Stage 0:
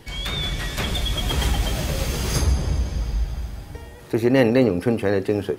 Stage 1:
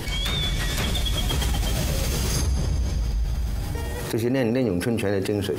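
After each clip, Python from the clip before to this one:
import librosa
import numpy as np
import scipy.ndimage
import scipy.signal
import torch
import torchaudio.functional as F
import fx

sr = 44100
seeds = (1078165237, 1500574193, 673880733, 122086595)

y = fx.bass_treble(x, sr, bass_db=3, treble_db=4)
y = fx.env_flatten(y, sr, amount_pct=70)
y = F.gain(torch.from_numpy(y), -8.5).numpy()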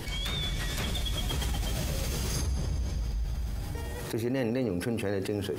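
y = fx.quant_float(x, sr, bits=6)
y = F.gain(torch.from_numpy(y), -7.0).numpy()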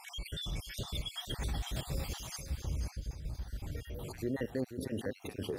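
y = fx.spec_dropout(x, sr, seeds[0], share_pct=59)
y = y + 10.0 ** (-10.0 / 20.0) * np.pad(y, (int(486 * sr / 1000.0), 0))[:len(y)]
y = F.gain(torch.from_numpy(y), -4.5).numpy()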